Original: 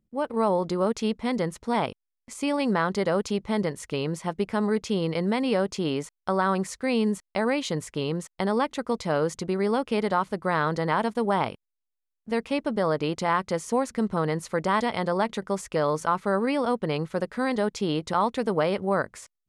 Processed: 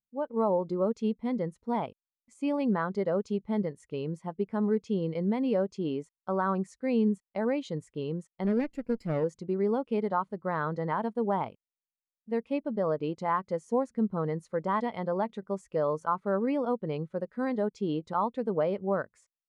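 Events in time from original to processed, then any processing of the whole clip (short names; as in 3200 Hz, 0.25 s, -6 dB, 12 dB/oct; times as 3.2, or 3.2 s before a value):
8.44–9.24 minimum comb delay 0.4 ms
whole clip: spectral expander 1.5:1; gain -4.5 dB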